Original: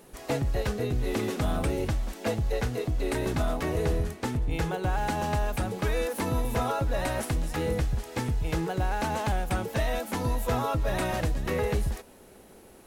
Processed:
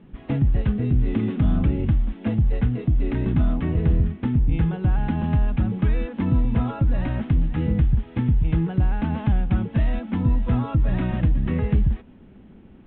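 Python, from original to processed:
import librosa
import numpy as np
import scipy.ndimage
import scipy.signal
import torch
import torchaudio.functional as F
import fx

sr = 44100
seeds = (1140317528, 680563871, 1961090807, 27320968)

y = scipy.signal.sosfilt(scipy.signal.butter(12, 3500.0, 'lowpass', fs=sr, output='sos'), x)
y = fx.low_shelf_res(y, sr, hz=330.0, db=12.0, q=1.5)
y = y * 10.0 ** (-3.5 / 20.0)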